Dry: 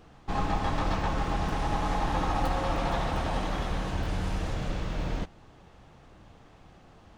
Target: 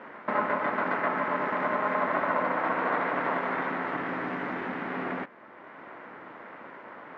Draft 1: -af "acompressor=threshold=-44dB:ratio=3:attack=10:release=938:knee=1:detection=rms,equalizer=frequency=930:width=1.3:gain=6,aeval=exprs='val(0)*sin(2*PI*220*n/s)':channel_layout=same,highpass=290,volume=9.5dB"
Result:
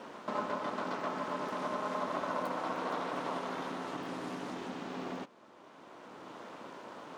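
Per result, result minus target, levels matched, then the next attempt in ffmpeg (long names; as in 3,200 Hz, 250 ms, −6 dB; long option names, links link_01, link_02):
downward compressor: peak gain reduction +5.5 dB; 2,000 Hz band −4.5 dB
-af "acompressor=threshold=-35.5dB:ratio=3:attack=10:release=938:knee=1:detection=rms,equalizer=frequency=930:width=1.3:gain=6,aeval=exprs='val(0)*sin(2*PI*220*n/s)':channel_layout=same,highpass=290,volume=9.5dB"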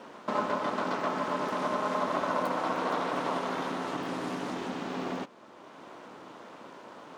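2,000 Hz band −5.0 dB
-af "acompressor=threshold=-35.5dB:ratio=3:attack=10:release=938:knee=1:detection=rms,lowpass=frequency=1800:width_type=q:width=3.6,equalizer=frequency=930:width=1.3:gain=6,aeval=exprs='val(0)*sin(2*PI*220*n/s)':channel_layout=same,highpass=290,volume=9.5dB"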